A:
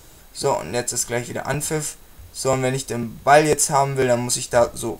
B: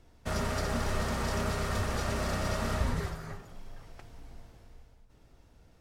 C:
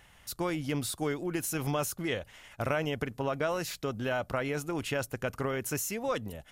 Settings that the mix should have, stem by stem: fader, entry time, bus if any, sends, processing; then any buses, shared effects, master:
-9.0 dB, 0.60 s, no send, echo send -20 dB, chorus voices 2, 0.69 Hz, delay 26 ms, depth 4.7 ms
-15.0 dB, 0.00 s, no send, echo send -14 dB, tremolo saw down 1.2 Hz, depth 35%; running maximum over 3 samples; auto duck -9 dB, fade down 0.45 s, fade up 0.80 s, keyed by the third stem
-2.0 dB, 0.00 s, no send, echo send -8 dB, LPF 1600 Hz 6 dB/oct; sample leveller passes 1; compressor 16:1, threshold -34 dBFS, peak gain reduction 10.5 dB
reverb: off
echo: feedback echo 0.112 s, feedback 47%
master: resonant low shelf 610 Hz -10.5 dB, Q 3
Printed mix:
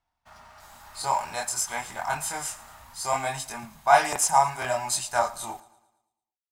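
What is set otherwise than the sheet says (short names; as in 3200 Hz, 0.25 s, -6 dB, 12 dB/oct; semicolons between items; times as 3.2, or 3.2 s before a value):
stem A -9.0 dB -> -2.0 dB; stem C: muted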